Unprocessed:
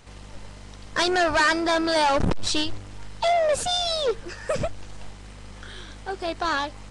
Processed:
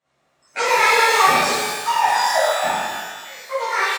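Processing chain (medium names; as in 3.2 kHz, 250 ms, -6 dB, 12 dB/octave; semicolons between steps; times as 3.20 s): spectral noise reduction 23 dB; pitch shift -4 st; in parallel at -9.5 dB: sample-and-hold 12×; on the sum: speed mistake 45 rpm record played at 78 rpm; cabinet simulation 240–8400 Hz, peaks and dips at 310 Hz -4 dB, 610 Hz +7 dB, 1.1 kHz +4 dB, 1.9 kHz +5 dB, 5.1 kHz -3 dB; pitch-shifted reverb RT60 1.4 s, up +12 st, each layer -8 dB, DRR -11.5 dB; trim -9.5 dB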